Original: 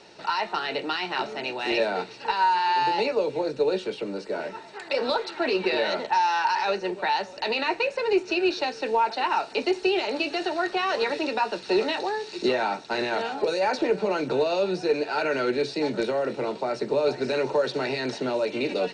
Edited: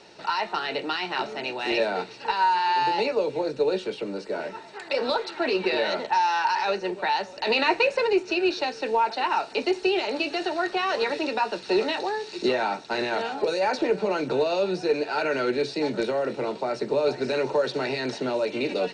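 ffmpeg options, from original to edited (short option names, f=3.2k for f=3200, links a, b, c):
-filter_complex "[0:a]asplit=3[a][b][c];[a]atrim=end=7.472[d];[b]atrim=start=7.468:end=8.072,asetpts=PTS-STARTPTS,volume=4dB[e];[c]atrim=start=8.068[f];[d][e]acrossfade=d=0.004:c1=hsin:c2=hsin[g];[g][f]acrossfade=d=0.004:c1=hsin:c2=hsin"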